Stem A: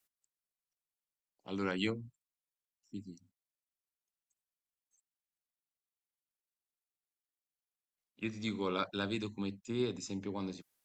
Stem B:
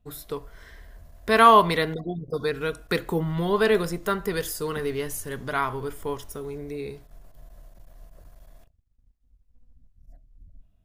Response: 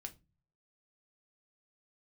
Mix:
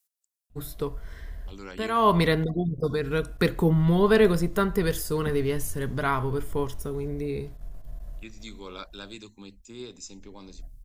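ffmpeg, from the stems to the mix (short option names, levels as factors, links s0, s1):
-filter_complex "[0:a]bass=f=250:g=-4,treble=f=4000:g=11,volume=0.531,asplit=2[s0][s1];[1:a]lowshelf=f=260:g=10.5,adelay=500,volume=0.891[s2];[s1]apad=whole_len=500291[s3];[s2][s3]sidechaincompress=threshold=0.00398:ratio=10:attack=16:release=271[s4];[s0][s4]amix=inputs=2:normalize=0"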